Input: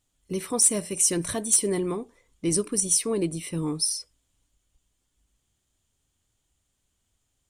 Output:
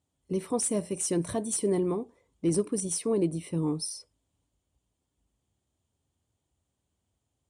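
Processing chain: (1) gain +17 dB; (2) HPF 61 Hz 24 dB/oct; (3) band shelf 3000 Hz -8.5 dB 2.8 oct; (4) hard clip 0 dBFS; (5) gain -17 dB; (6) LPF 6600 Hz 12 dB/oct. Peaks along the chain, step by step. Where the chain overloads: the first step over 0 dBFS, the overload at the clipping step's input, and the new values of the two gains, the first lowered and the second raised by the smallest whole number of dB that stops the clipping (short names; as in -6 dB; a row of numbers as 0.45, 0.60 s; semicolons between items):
+8.0, +8.0, +7.0, 0.0, -17.0, -17.0 dBFS; step 1, 7.0 dB; step 1 +10 dB, step 5 -10 dB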